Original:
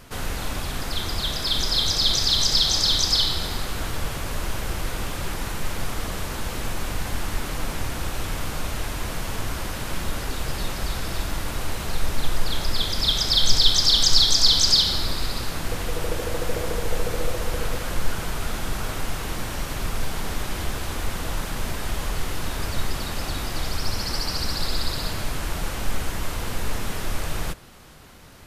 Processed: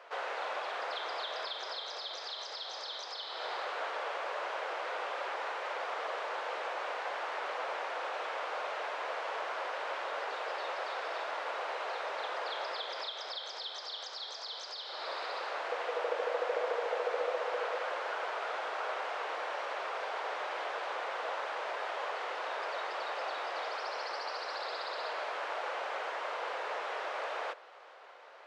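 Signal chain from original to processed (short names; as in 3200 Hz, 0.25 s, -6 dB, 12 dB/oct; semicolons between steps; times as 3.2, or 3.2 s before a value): steep high-pass 500 Hz 36 dB/oct; compressor 12:1, threshold -27 dBFS, peak gain reduction 14 dB; tape spacing loss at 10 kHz 38 dB; gain +3.5 dB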